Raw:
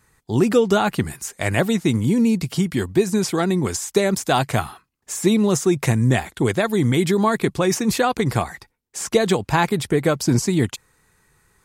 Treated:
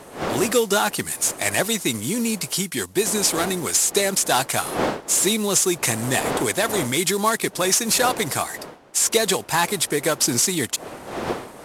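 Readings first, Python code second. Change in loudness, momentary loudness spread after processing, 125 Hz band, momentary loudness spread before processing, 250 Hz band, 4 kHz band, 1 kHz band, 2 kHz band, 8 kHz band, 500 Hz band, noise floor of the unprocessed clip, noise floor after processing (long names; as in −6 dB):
−0.5 dB, 7 LU, −10.5 dB, 7 LU, −6.5 dB, +5.5 dB, 0.0 dB, +1.5 dB, +9.5 dB, −3.0 dB, −70 dBFS, −43 dBFS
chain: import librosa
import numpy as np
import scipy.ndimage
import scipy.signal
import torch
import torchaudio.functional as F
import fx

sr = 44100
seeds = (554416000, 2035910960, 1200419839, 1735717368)

y = fx.cvsd(x, sr, bps=64000)
y = fx.dmg_wind(y, sr, seeds[0], corner_hz=520.0, level_db=-29.0)
y = fx.riaa(y, sr, side='recording')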